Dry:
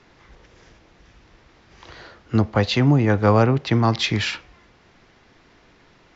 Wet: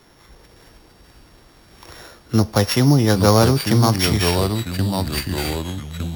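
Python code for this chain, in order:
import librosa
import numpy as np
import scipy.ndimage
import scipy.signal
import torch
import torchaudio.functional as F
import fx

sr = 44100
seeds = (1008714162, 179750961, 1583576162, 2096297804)

y = np.r_[np.sort(x[:len(x) // 8 * 8].reshape(-1, 8), axis=1).ravel(), x[len(x) // 8 * 8:]]
y = fx.echo_pitch(y, sr, ms=374, semitones=-3, count=3, db_per_echo=-6.0)
y = y * librosa.db_to_amplitude(2.0)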